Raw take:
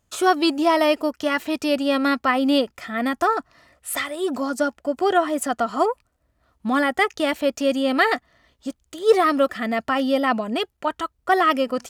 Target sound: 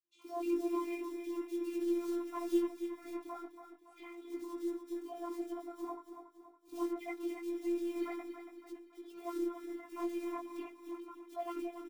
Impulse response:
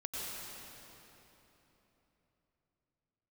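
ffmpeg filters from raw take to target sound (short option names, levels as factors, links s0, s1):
-filter_complex "[0:a]lowpass=7300,lowshelf=f=77:g=-9.5,bandreject=f=50:t=h:w=6,bandreject=f=100:t=h:w=6,bandreject=f=150:t=h:w=6,bandreject=f=200:t=h:w=6,bandreject=f=250:t=h:w=6,bandreject=f=300:t=h:w=6,bandreject=f=350:t=h:w=6,bandreject=f=400:t=h:w=6,aecho=1:1:3.8:0.99,aeval=exprs='0.794*(cos(1*acos(clip(val(0)/0.794,-1,1)))-cos(1*PI/2))+0.00562*(cos(6*acos(clip(val(0)/0.794,-1,1)))-cos(6*PI/2))+0.0141*(cos(8*acos(clip(val(0)/0.794,-1,1)))-cos(8*PI/2))':c=same,asplit=3[s0][s1][s2];[s0]bandpass=f=300:t=q:w=8,volume=1[s3];[s1]bandpass=f=870:t=q:w=8,volume=0.501[s4];[s2]bandpass=f=2240:t=q:w=8,volume=0.355[s5];[s3][s4][s5]amix=inputs=3:normalize=0,acrusher=bits=6:mode=log:mix=0:aa=0.000001,acrossover=split=340|2500[s6][s7][s8];[s6]adelay=30[s9];[s7]adelay=70[s10];[s9][s10][s8]amix=inputs=3:normalize=0,flanger=delay=16.5:depth=4.9:speed=0.45,afftfilt=real='hypot(re,im)*cos(PI*b)':imag='0':win_size=512:overlap=0.75,asplit=2[s11][s12];[s12]aecho=0:1:281|562|843|1124|1405:0.355|0.16|0.0718|0.0323|0.0145[s13];[s11][s13]amix=inputs=2:normalize=0,volume=0.596"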